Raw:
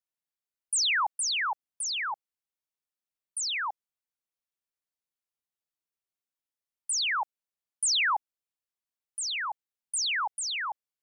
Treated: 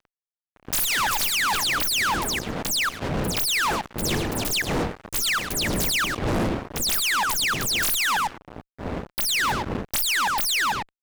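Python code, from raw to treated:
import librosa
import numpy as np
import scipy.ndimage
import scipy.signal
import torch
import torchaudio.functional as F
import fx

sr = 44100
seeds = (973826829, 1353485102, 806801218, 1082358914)

p1 = fx.tracing_dist(x, sr, depth_ms=0.2)
p2 = fx.dmg_wind(p1, sr, seeds[0], corner_hz=350.0, level_db=-44.0)
p3 = fx.echo_pitch(p2, sr, ms=268, semitones=6, count=3, db_per_echo=-6.0)
p4 = p3 + fx.echo_feedback(p3, sr, ms=106, feedback_pct=18, wet_db=-12.5, dry=0)
p5 = fx.fuzz(p4, sr, gain_db=44.0, gate_db=-47.0)
y = p5 * 10.0 ** (-8.0 / 20.0)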